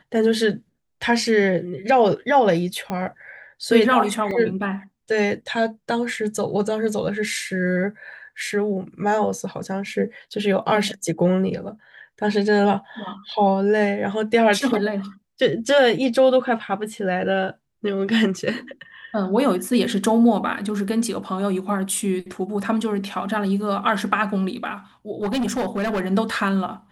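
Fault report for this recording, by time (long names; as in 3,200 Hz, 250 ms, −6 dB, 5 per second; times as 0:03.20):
0:02.90: click −14 dBFS
0:04.31: drop-out 2.3 ms
0:25.22–0:26.01: clipping −19.5 dBFS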